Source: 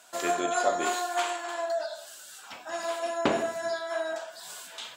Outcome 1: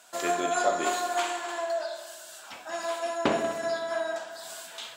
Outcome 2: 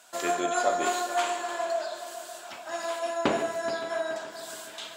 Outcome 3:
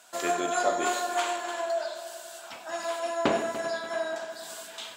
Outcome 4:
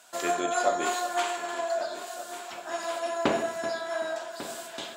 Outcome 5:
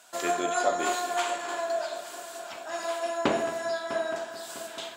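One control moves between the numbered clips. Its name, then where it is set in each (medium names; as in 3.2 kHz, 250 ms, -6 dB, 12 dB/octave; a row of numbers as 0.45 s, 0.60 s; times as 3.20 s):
multi-head delay, time: 63 ms, 142 ms, 97 ms, 382 ms, 217 ms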